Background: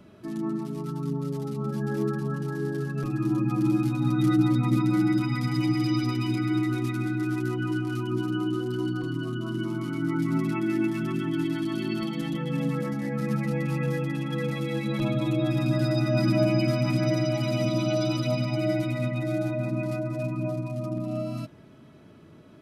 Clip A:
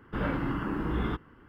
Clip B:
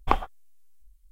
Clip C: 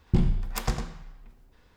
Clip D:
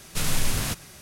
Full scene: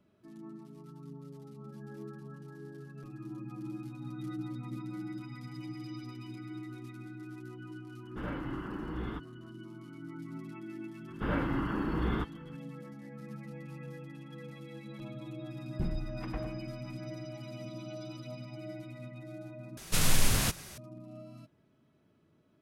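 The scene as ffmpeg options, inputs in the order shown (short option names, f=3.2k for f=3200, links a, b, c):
-filter_complex "[1:a]asplit=2[a][b];[0:a]volume=-17.5dB[c];[3:a]lowpass=f=2.6k:w=0.5412,lowpass=f=2.6k:w=1.3066[d];[c]asplit=2[e][f];[e]atrim=end=19.774[g];[4:a]atrim=end=1.01,asetpts=PTS-STARTPTS,volume=-1dB[h];[f]atrim=start=20.776[i];[a]atrim=end=1.48,asetpts=PTS-STARTPTS,volume=-8.5dB,afade=t=in:d=0.004:c=hsin,afade=t=out:st=1.476:d=0.004:c=hsin,adelay=8030[j];[b]atrim=end=1.48,asetpts=PTS-STARTPTS,volume=-1.5dB,afade=t=in:d=0.004:c=hsin,afade=t=out:st=1.476:d=0.004:c=hsin,adelay=11080[k];[d]atrim=end=1.76,asetpts=PTS-STARTPTS,volume=-11.5dB,afade=t=in:d=0.004:c=hsin,afade=t=out:st=1.756:d=0.004:c=hsin,adelay=15660[l];[g][h]acrossfade=d=0.004:c1=hsin:c2=hsin[m];[m][i]acrossfade=d=0.004:c1=hsin:c2=hsin[n];[n][j][k][l]amix=inputs=4:normalize=0"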